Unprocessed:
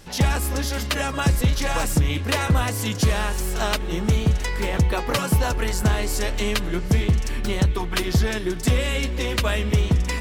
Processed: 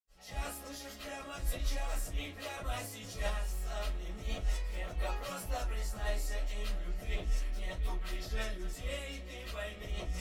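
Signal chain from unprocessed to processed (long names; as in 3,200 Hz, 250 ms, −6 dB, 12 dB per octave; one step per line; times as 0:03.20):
transient designer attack −8 dB, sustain +10 dB
convolution reverb RT60 0.20 s, pre-delay 75 ms, DRR −60 dB
level +14.5 dB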